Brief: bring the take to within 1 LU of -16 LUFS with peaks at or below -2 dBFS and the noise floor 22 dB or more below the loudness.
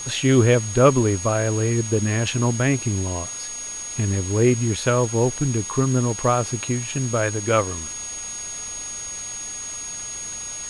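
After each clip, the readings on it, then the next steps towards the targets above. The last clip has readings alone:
steady tone 6600 Hz; tone level -30 dBFS; noise floor -32 dBFS; noise floor target -44 dBFS; loudness -22.0 LUFS; peak -3.0 dBFS; loudness target -16.0 LUFS
-> notch 6600 Hz, Q 30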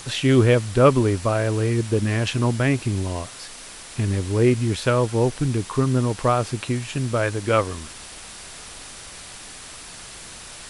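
steady tone none; noise floor -40 dBFS; noise floor target -44 dBFS
-> noise print and reduce 6 dB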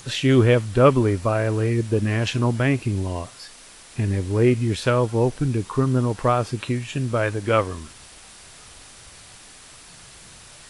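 noise floor -46 dBFS; loudness -21.5 LUFS; peak -3.0 dBFS; loudness target -16.0 LUFS
-> gain +5.5 dB; limiter -2 dBFS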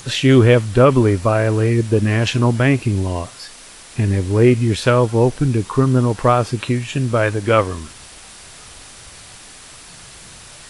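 loudness -16.5 LUFS; peak -2.0 dBFS; noise floor -40 dBFS

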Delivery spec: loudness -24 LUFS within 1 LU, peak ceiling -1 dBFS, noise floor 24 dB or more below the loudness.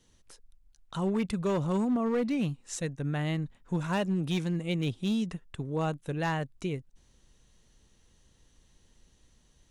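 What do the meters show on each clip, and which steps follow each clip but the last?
clipped 1.2%; flat tops at -23.0 dBFS; loudness -31.5 LUFS; peak -23.0 dBFS; loudness target -24.0 LUFS
-> clip repair -23 dBFS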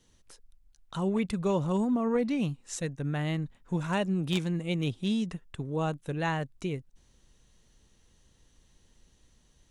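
clipped 0.0%; loudness -31.0 LUFS; peak -14.0 dBFS; loudness target -24.0 LUFS
-> gain +7 dB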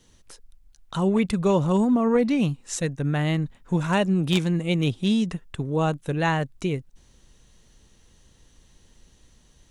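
loudness -24.0 LUFS; peak -7.0 dBFS; noise floor -58 dBFS

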